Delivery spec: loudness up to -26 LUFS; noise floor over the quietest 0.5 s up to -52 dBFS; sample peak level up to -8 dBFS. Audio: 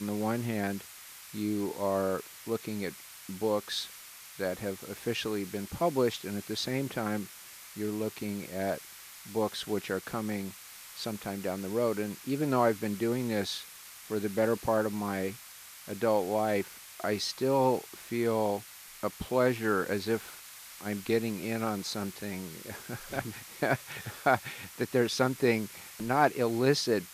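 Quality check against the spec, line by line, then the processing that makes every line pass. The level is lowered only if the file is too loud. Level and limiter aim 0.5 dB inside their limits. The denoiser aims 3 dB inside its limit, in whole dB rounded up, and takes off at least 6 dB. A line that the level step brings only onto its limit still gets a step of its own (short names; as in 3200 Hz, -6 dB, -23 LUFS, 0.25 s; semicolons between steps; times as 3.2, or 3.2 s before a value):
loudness -32.0 LUFS: OK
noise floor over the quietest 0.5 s -49 dBFS: fail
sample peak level -11.0 dBFS: OK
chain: denoiser 6 dB, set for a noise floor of -49 dBFS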